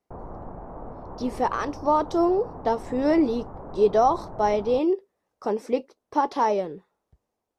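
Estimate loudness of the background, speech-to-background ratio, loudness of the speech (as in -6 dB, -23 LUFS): -40.5 LUFS, 16.0 dB, -24.5 LUFS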